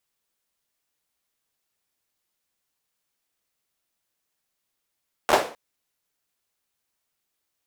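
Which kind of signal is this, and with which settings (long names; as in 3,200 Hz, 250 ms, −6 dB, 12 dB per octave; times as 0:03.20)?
synth clap length 0.26 s, apart 13 ms, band 570 Hz, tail 0.38 s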